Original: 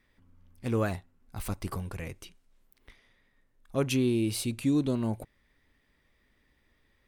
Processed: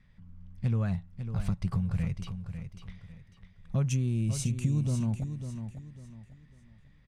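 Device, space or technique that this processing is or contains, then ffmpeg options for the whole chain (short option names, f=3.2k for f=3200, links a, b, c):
jukebox: -filter_complex "[0:a]asettb=1/sr,asplit=3[a][b][c];[a]atrim=end=3.844[d];[b]atrim=start=3.84:end=4.93,asetpts=PTS-STARTPTS,afade=t=in:d=0.004:c=qsin,afade=t=out:st=1.086:d=0.004:c=qsin,highshelf=f=5.3k:t=q:w=3:g=6.5[e];[c]atrim=start=4.926[f];[d][e]acrossfade=d=0.004:c1=hsin:c2=qsin[g];[g][f]acrossfade=d=0.004:c1=qsin:c2=hsin,lowpass=6.1k,lowshelf=f=230:t=q:w=3:g=10,acompressor=threshold=-26dB:ratio=5,aecho=1:1:549|1098|1647|2196:0.355|0.11|0.0341|0.0106"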